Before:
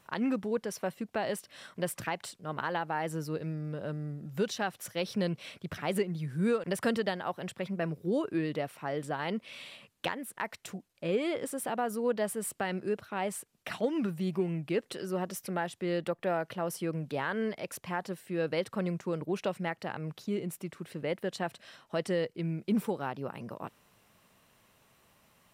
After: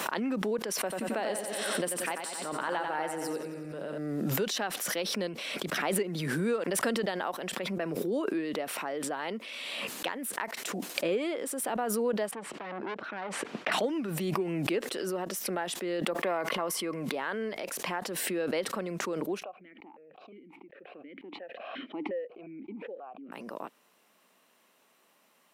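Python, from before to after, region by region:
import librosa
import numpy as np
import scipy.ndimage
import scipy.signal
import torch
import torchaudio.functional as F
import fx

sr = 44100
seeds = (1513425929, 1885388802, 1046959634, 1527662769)

y = fx.chain(x, sr, fx.peak_eq(hz=8900.0, db=8.5, octaves=0.3),
    fx.echo_feedback(ms=91, feedback_pct=57, wet_db=-6), at=(0.78, 3.98))
y = fx.chain(y, sr, fx.lowpass(hz=2500.0, slope=12),
    fx.low_shelf(hz=87.0, db=9.0),
    fx.transformer_sat(knee_hz=1700.0), at=(12.31, 13.72))
y = fx.chain(y, sr, fx.small_body(hz=(1100.0, 2100.0), ring_ms=35, db=13),
    fx.sustainer(db_per_s=34.0), at=(16.21, 17.15))
y = fx.chain(y, sr, fx.air_absorb(metres=470.0),
    fx.vowel_held(hz=5.6), at=(19.43, 23.32))
y = scipy.signal.sosfilt(scipy.signal.butter(4, 230.0, 'highpass', fs=sr, output='sos'), y)
y = fx.pre_swell(y, sr, db_per_s=20.0)
y = y * librosa.db_to_amplitude(-1.0)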